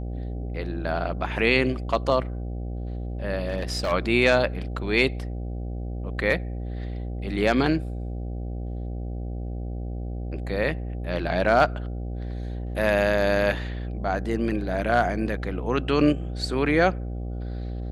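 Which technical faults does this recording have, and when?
mains buzz 60 Hz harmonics 13 −31 dBFS
0:03.46–0:03.92: clipping −20.5 dBFS

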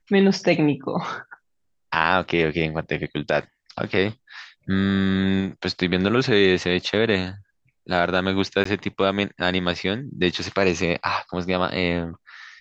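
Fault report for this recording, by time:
0:08.64–0:08.65: drop-out 14 ms

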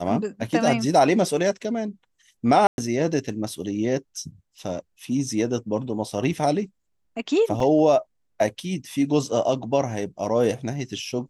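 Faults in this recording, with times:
0:02.67–0:02.78: drop-out 111 ms
0:07.60: drop-out 2.4 ms

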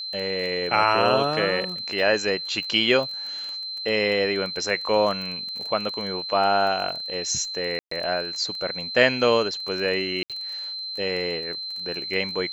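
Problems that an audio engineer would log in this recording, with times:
surface crackle 16 per second −30 dBFS
whistle 4,100 Hz −30 dBFS
0:07.79–0:07.91: drop-out 124 ms
0:10.23–0:10.30: drop-out 67 ms

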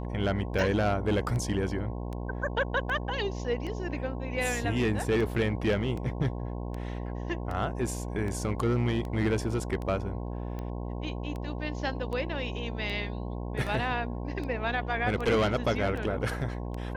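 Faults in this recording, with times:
mains buzz 60 Hz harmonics 18 −35 dBFS
scratch tick 78 rpm

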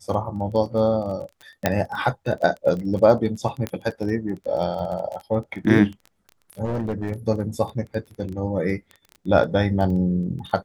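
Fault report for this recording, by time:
surface crackle 16 per second −30 dBFS
0:01.66: click −4 dBFS
0:03.67: click −12 dBFS
0:06.64–0:07.11: clipping −21 dBFS

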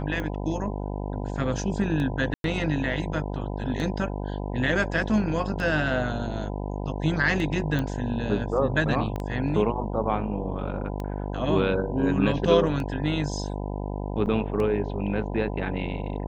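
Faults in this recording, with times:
mains buzz 50 Hz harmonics 20 −31 dBFS
scratch tick 33 1/3 rpm −20 dBFS
0:02.34–0:02.44: drop-out 102 ms
0:07.79: click −16 dBFS
0:09.16: click −20 dBFS
0:14.26–0:14.27: drop-out 8.2 ms

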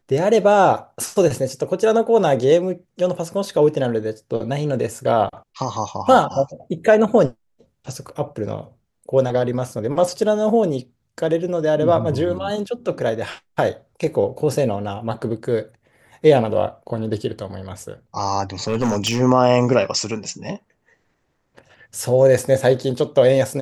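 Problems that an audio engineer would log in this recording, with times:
0:18.67–0:19.21: clipping −15 dBFS

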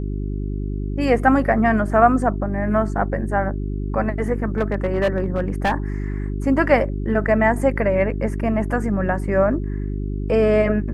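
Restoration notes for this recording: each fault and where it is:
mains hum 50 Hz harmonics 8 −25 dBFS
0:04.58–0:05.72: clipping −14 dBFS

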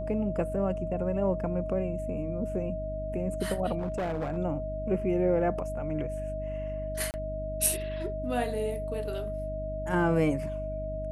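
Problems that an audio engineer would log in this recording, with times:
mains hum 50 Hz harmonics 6 −37 dBFS
whistle 630 Hz −34 dBFS
0:03.78–0:04.38: clipping −27.5 dBFS
0:07.11–0:07.14: drop-out 29 ms

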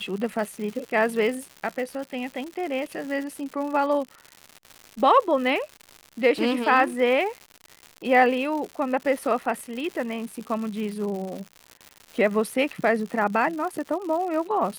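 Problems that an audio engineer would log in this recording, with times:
surface crackle 180 per second −32 dBFS

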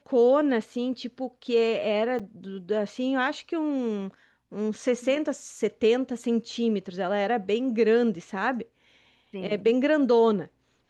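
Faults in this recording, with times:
0:02.19–0:02.20: drop-out 5.9 ms

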